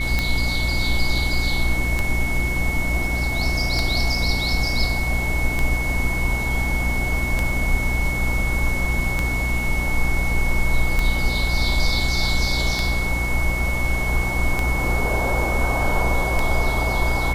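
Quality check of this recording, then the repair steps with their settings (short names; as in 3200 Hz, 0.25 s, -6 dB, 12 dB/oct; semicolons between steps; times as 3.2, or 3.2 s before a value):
hum 60 Hz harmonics 6 -25 dBFS
tick 33 1/3 rpm -7 dBFS
tone 2200 Hz -25 dBFS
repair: de-click; de-hum 60 Hz, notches 6; notch 2200 Hz, Q 30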